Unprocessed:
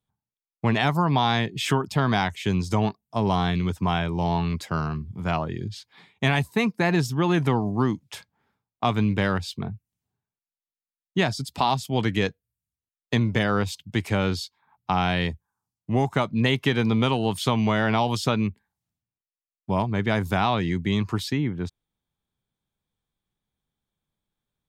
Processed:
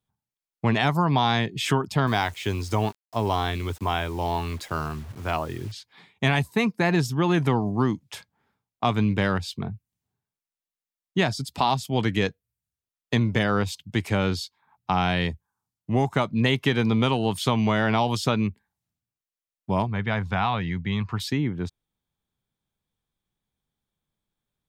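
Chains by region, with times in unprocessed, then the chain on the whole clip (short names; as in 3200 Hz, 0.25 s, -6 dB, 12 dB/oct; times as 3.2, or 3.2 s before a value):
2.07–5.72 bell 180 Hz -14.5 dB 0.34 oct + requantised 8-bit, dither none
19.87–21.2 LPF 3300 Hz + bell 330 Hz -10.5 dB 0.97 oct + notch 610 Hz
whole clip: dry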